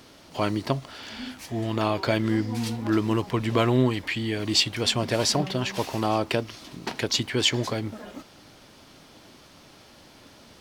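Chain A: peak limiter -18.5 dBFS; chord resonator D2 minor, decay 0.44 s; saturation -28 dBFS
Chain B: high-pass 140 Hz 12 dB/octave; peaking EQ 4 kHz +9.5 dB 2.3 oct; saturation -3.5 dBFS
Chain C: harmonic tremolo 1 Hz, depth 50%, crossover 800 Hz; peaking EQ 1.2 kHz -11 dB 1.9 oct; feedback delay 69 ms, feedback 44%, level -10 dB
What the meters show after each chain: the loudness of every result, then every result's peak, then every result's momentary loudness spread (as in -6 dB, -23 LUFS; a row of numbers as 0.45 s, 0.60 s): -42.5 LUFS, -21.5 LUFS, -29.5 LUFS; -29.0 dBFS, -4.0 dBFS, -10.0 dBFS; 11 LU, 15 LU, 16 LU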